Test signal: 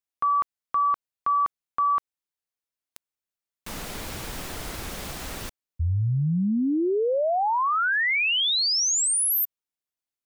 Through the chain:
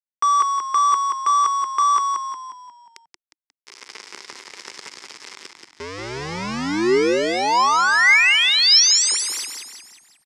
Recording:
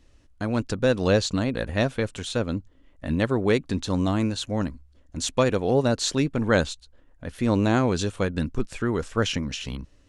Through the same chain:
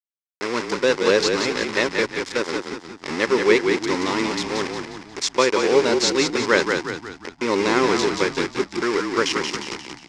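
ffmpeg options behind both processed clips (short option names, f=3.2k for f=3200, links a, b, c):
-filter_complex "[0:a]aeval=exprs='val(0)*gte(abs(val(0)),0.0473)':c=same,highpass=370,equalizer=f=390:t=q:w=4:g=8,equalizer=f=680:t=q:w=4:g=-10,equalizer=f=1k:t=q:w=4:g=5,equalizer=f=2.1k:t=q:w=4:g=8,equalizer=f=5.2k:t=q:w=4:g=9,lowpass=f=7.7k:w=0.5412,lowpass=f=7.7k:w=1.3066,asplit=7[a][b][c][d][e][f][g];[b]adelay=179,afreqshift=-38,volume=-5dB[h];[c]adelay=358,afreqshift=-76,volume=-11.6dB[i];[d]adelay=537,afreqshift=-114,volume=-18.1dB[j];[e]adelay=716,afreqshift=-152,volume=-24.7dB[k];[f]adelay=895,afreqshift=-190,volume=-31.2dB[l];[g]adelay=1074,afreqshift=-228,volume=-37.8dB[m];[a][h][i][j][k][l][m]amix=inputs=7:normalize=0,volume=3.5dB"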